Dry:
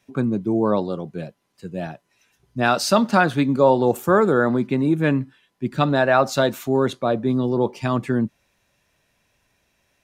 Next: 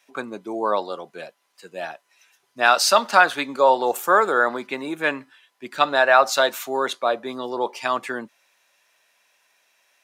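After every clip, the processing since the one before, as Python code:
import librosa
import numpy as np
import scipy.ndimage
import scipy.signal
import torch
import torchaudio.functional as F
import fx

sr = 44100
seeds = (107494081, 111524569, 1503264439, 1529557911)

y = scipy.signal.sosfilt(scipy.signal.butter(2, 750.0, 'highpass', fs=sr, output='sos'), x)
y = y * librosa.db_to_amplitude(5.0)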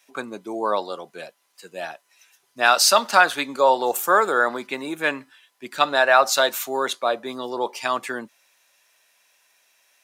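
y = fx.high_shelf(x, sr, hz=4900.0, db=7.5)
y = y * librosa.db_to_amplitude(-1.0)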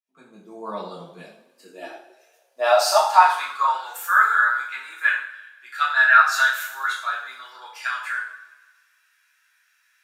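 y = fx.fade_in_head(x, sr, length_s=0.91)
y = fx.rev_double_slope(y, sr, seeds[0], early_s=0.54, late_s=1.5, knee_db=-16, drr_db=-6.5)
y = fx.filter_sweep_highpass(y, sr, from_hz=170.0, to_hz=1500.0, start_s=1.11, end_s=3.92, q=7.0)
y = y * librosa.db_to_amplitude(-14.0)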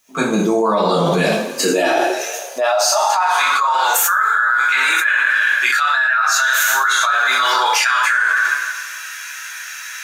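y = fx.peak_eq(x, sr, hz=6400.0, db=10.5, octaves=0.2)
y = fx.room_shoebox(y, sr, seeds[1], volume_m3=190.0, walls='furnished', distance_m=0.32)
y = fx.env_flatten(y, sr, amount_pct=100)
y = y * librosa.db_to_amplitude(-7.0)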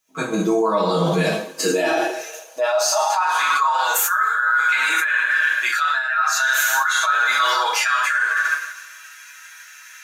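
y = x + 0.68 * np.pad(x, (int(6.3 * sr / 1000.0), 0))[:len(x)]
y = fx.upward_expand(y, sr, threshold_db=-29.0, expansion=1.5)
y = y * librosa.db_to_amplitude(-4.5)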